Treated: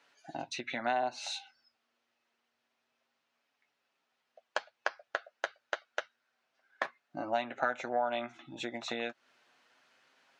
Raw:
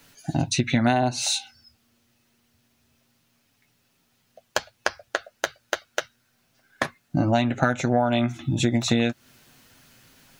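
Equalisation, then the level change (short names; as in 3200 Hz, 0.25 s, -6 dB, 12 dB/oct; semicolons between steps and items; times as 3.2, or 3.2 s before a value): HPF 630 Hz 12 dB/oct; tape spacing loss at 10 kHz 23 dB; -4.0 dB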